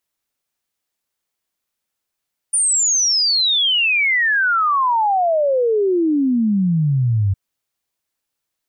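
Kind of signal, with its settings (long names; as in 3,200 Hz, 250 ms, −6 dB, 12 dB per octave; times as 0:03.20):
exponential sine sweep 9,500 Hz → 94 Hz 4.81 s −13.5 dBFS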